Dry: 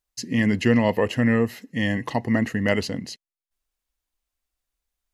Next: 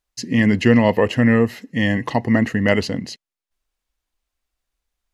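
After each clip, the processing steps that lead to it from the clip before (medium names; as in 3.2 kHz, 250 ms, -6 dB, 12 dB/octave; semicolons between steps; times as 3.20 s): treble shelf 8.1 kHz -8.5 dB; trim +5 dB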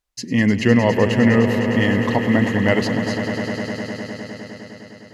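echo with a slow build-up 102 ms, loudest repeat 5, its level -11.5 dB; trim -1 dB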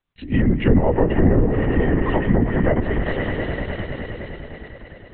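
low-pass that closes with the level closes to 830 Hz, closed at -11.5 dBFS; LPC vocoder at 8 kHz whisper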